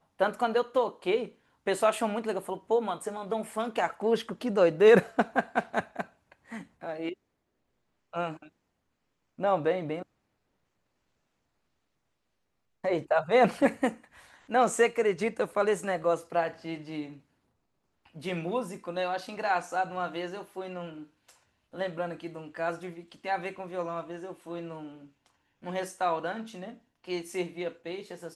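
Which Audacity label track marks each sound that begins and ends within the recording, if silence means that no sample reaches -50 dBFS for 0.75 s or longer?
8.130000	8.480000	sound
9.380000	10.030000	sound
12.840000	17.190000	sound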